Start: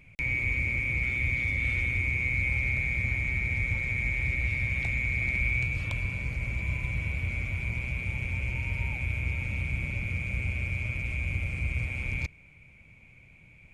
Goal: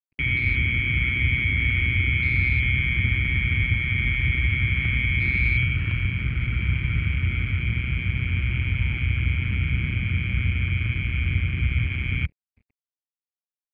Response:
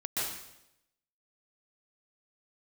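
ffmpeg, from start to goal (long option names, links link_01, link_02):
-af "afwtdn=0.0158,highpass=51,aresample=11025,aeval=exprs='sgn(val(0))*max(abs(val(0))-0.00106,0)':channel_layout=same,aresample=44100,acontrast=89,lowpass=2200,volume=2dB"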